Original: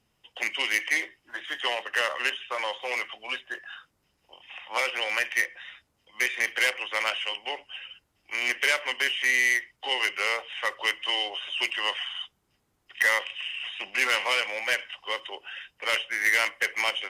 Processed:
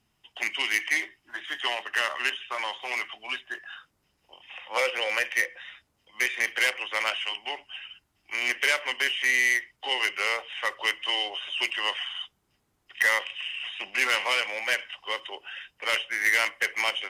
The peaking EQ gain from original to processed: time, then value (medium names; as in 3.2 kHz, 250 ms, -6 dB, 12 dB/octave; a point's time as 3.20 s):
peaking EQ 510 Hz 0.23 oct
-13 dB
from 3.62 s -2 dB
from 4.52 s +7.5 dB
from 5.61 s -2 dB
from 7.16 s -13.5 dB
from 8.33 s -2 dB